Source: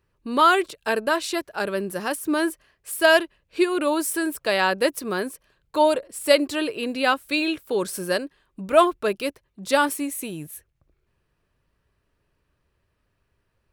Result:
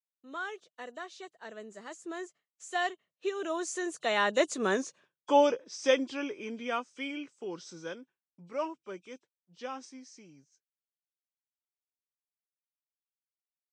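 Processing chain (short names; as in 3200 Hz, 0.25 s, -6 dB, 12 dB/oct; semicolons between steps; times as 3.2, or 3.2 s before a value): nonlinear frequency compression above 2500 Hz 1.5:1; Doppler pass-by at 4.89, 33 m/s, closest 17 m; expander -52 dBFS; HPF 150 Hz 24 dB/oct; gain -1.5 dB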